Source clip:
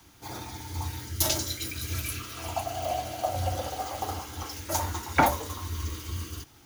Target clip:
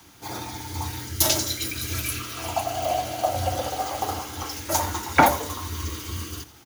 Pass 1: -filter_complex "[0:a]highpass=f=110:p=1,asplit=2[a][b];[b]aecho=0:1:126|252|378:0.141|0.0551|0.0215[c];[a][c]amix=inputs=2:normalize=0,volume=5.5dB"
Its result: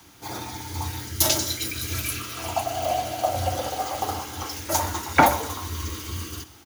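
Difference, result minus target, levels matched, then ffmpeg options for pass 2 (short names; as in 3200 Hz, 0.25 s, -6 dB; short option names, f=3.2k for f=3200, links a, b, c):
echo 43 ms late
-filter_complex "[0:a]highpass=f=110:p=1,asplit=2[a][b];[b]aecho=0:1:83|166|249:0.141|0.0551|0.0215[c];[a][c]amix=inputs=2:normalize=0,volume=5.5dB"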